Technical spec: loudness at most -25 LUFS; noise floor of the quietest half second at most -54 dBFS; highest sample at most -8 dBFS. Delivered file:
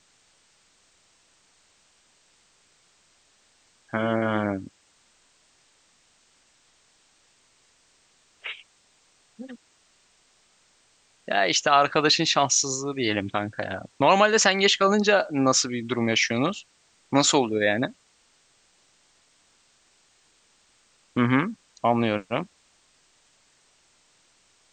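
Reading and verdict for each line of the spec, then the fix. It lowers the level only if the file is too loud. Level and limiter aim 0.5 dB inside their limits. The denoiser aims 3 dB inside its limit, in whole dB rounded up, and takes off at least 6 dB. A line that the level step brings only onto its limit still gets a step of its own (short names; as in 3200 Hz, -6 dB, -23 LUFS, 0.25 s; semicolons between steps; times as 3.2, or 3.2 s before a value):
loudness -22.5 LUFS: fail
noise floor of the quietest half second -63 dBFS: OK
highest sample -4.0 dBFS: fail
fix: gain -3 dB; limiter -8.5 dBFS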